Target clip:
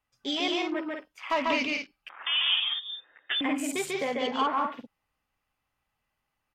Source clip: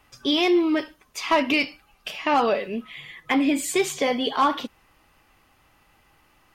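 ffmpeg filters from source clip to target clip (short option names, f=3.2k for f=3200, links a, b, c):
-filter_complex "[0:a]afwtdn=0.0224,equalizer=f=340:w=3.7:g=-7.5,aecho=1:1:142.9|195.3:0.794|0.501,asettb=1/sr,asplit=3[a][b][c];[a]atrim=end=2.094[d];[b]atrim=start=2.09:end=3.41,asetpts=PTS-STARTPTS,afade=t=in:d=0.004:c=qsin,afade=t=out:st=1.316:d=0.004:c=qsin,lowpass=f=3.2k:t=q:w=0.5098,lowpass=f=3.2k:t=q:w=0.6013,lowpass=f=3.2k:t=q:w=0.9,lowpass=f=3.2k:t=q:w=2.563,afreqshift=-3800[e];[c]atrim=start=3.406[f];[d][e]acrossfade=d=0.004:c1=hsin:c2=qsin[g];[g][f]acrossfade=d=0.004:c1=qsin:c2=hsin,volume=-7dB"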